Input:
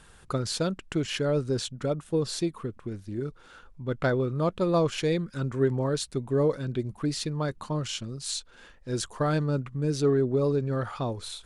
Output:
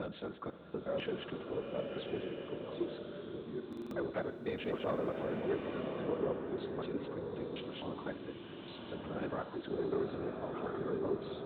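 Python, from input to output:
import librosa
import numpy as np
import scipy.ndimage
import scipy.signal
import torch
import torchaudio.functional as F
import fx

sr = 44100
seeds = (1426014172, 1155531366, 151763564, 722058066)

y = fx.block_reorder(x, sr, ms=124.0, group=6)
y = fx.lpc_vocoder(y, sr, seeds[0], excitation='whisper', order=10)
y = 10.0 ** (-18.0 / 20.0) * np.tanh(y / 10.0 ** (-18.0 / 20.0))
y = scipy.signal.sosfilt(scipy.signal.butter(2, 210.0, 'highpass', fs=sr, output='sos'), y)
y = fx.air_absorb(y, sr, metres=200.0)
y = fx.echo_feedback(y, sr, ms=67, feedback_pct=59, wet_db=-15.0)
y = fx.buffer_glitch(y, sr, at_s=(3.68,), block=2048, repeats=4)
y = fx.rev_bloom(y, sr, seeds[1], attack_ms=1190, drr_db=3.0)
y = y * librosa.db_to_amplitude(-7.0)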